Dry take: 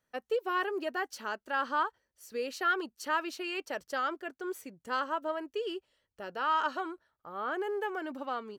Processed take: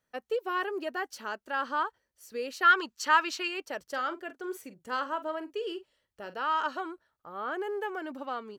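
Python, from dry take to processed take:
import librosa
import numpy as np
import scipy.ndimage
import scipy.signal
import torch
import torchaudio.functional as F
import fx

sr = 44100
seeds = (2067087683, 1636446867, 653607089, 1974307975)

y = fx.spec_box(x, sr, start_s=2.63, length_s=0.85, low_hz=880.0, high_hz=8000.0, gain_db=8)
y = fx.doubler(y, sr, ms=44.0, db=-13.0, at=(3.86, 6.4))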